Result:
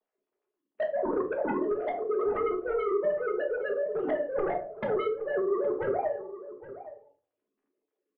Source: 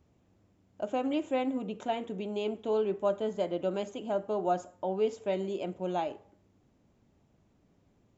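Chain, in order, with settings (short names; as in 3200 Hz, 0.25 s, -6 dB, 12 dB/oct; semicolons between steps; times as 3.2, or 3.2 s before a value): sine-wave speech; gate -52 dBFS, range -24 dB; compressor 6:1, threshold -28 dBFS, peak gain reduction 10 dB; on a send: early reflections 14 ms -6.5 dB, 49 ms -16 dB; on the sum: treble ducked by the level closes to 360 Hz, closed at -33.5 dBFS; sine folder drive 12 dB, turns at -27 dBFS; treble ducked by the level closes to 1300 Hz, closed at -32.5 dBFS; outdoor echo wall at 140 m, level -14 dB; shoebox room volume 300 m³, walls furnished, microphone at 1.4 m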